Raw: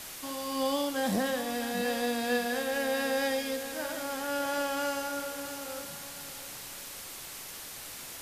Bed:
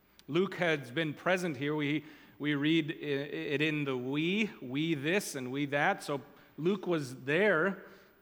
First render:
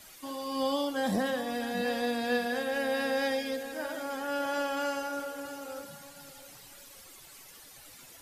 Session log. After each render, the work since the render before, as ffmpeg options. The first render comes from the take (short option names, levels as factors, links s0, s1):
-af "afftdn=nr=12:nf=-43"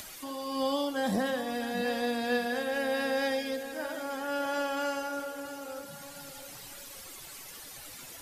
-af "acompressor=mode=upward:threshold=0.0126:ratio=2.5"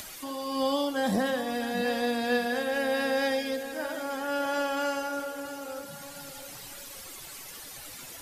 -af "volume=1.33"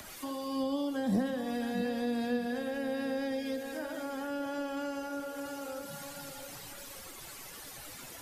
-filter_complex "[0:a]acrossover=split=390[s0][s1];[s1]acompressor=threshold=0.0112:ratio=6[s2];[s0][s2]amix=inputs=2:normalize=0,acrossover=split=120|1500|1800[s3][s4][s5][s6];[s6]alimiter=level_in=5.01:limit=0.0631:level=0:latency=1:release=214,volume=0.2[s7];[s3][s4][s5][s7]amix=inputs=4:normalize=0"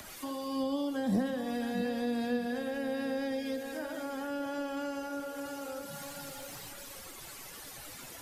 -filter_complex "[0:a]asettb=1/sr,asplit=3[s0][s1][s2];[s0]atrim=end=5.954[s3];[s1]atrim=start=5.95:end=6.69,asetpts=PTS-STARTPTS,afade=t=in:d=0.004:c=qsin,afade=t=out:st=0.736:d=0.004:c=qsin,aeval=exprs='val(0)+0.5*0.00141*sgn(val(0))':c=same[s4];[s2]atrim=start=6.686[s5];[s3][s4]acrossfade=d=0.004:c1=hsin:c2=qsin[s6];[s6][s5]acrossfade=d=0.004:c1=qsin:c2=hsin"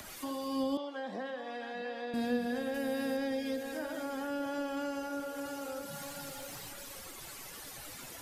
-filter_complex "[0:a]asettb=1/sr,asplit=3[s0][s1][s2];[s0]atrim=end=0.774[s3];[s1]atrim=start=0.77:end=2.14,asetpts=PTS-STARTPTS,afade=t=in:d=0.004:c=qsin,afade=t=out:st=1.366:d=0.004:c=qsin,highpass=560,lowpass=3400[s4];[s2]atrim=start=2.136[s5];[s3][s4]acrossfade=d=0.004:c1=hsin:c2=qsin[s6];[s6][s5]acrossfade=d=0.004:c1=qsin:c2=hsin,asettb=1/sr,asplit=3[s7][s8][s9];[s7]atrim=end=2.744[s10];[s8]atrim=start=2.74:end=3.17,asetpts=PTS-STARTPTS,afade=t=in:d=0.004:c=qsin,afade=t=out:st=0.426:d=0.004:c=qsin,highshelf=f=7700:g=9.5[s11];[s9]atrim=start=3.166[s12];[s10][s11]acrossfade=d=0.004:c1=hsin:c2=qsin[s13];[s13][s12]acrossfade=d=0.004:c1=qsin:c2=hsin"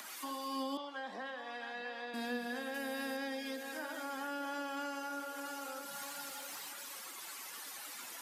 -af "highpass=f=220:w=0.5412,highpass=f=220:w=1.3066,lowshelf=f=740:t=q:w=1.5:g=-6"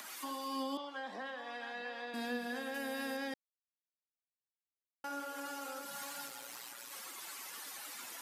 -filter_complex "[0:a]asplit=3[s0][s1][s2];[s0]afade=t=out:st=6.26:d=0.02[s3];[s1]tremolo=f=120:d=0.621,afade=t=in:st=6.26:d=0.02,afade=t=out:st=6.91:d=0.02[s4];[s2]afade=t=in:st=6.91:d=0.02[s5];[s3][s4][s5]amix=inputs=3:normalize=0,asplit=3[s6][s7][s8];[s6]atrim=end=3.34,asetpts=PTS-STARTPTS,afade=t=out:st=3.336:d=0.004:c=hsin[s9];[s7]atrim=start=3.34:end=5.04,asetpts=PTS-STARTPTS,volume=0[s10];[s8]atrim=start=5.04,asetpts=PTS-STARTPTS,afade=t=in:d=0.004:c=hsin[s11];[s9][s10][s11]concat=n=3:v=0:a=1"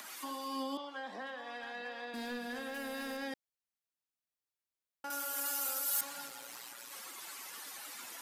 -filter_complex "[0:a]asettb=1/sr,asplit=3[s0][s1][s2];[s0]atrim=end=1.224[s3];[s1]atrim=start=1.22:end=3.23,asetpts=PTS-STARTPTS,afade=t=in:d=0.004:c=qsin,afade=t=out:st=2.006:d=0.004:c=qsin,asoftclip=type=hard:threshold=0.015[s4];[s2]atrim=start=3.226[s5];[s3][s4]acrossfade=d=0.004:c1=hsin:c2=qsin[s6];[s6][s5]acrossfade=d=0.004:c1=qsin:c2=hsin,asettb=1/sr,asplit=3[s7][s8][s9];[s7]atrim=end=5.104[s10];[s8]atrim=start=5.1:end=6.01,asetpts=PTS-STARTPTS,afade=t=in:d=0.004:c=qsin,afade=t=out:st=0.906:d=0.004:c=qsin,aemphasis=mode=production:type=riaa[s11];[s9]atrim=start=6.006[s12];[s10][s11]acrossfade=d=0.004:c1=hsin:c2=qsin[s13];[s13][s12]acrossfade=d=0.004:c1=qsin:c2=hsin"